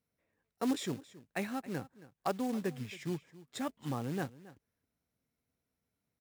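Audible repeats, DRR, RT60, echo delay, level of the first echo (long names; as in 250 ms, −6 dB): 1, no reverb audible, no reverb audible, 273 ms, −18.5 dB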